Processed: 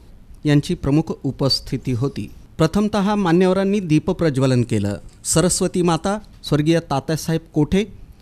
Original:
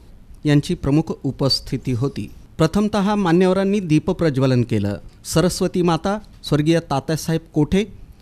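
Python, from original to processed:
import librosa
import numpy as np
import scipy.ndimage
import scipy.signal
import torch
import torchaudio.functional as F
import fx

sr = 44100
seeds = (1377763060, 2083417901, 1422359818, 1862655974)

y = fx.peak_eq(x, sr, hz=8100.0, db=12.0, octaves=0.51, at=(4.35, 6.17))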